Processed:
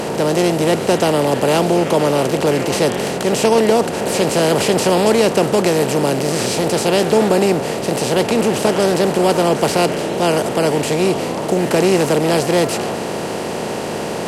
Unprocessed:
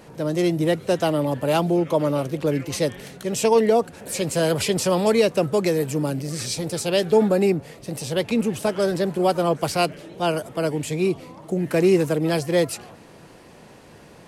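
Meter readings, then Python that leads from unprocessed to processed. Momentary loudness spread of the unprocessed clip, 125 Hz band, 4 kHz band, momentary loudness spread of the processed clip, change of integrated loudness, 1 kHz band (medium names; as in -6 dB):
9 LU, +5.0 dB, +8.5 dB, 6 LU, +6.0 dB, +8.5 dB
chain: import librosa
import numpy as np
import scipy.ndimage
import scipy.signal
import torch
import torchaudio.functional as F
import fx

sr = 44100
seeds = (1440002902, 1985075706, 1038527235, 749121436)

y = fx.bin_compress(x, sr, power=0.4)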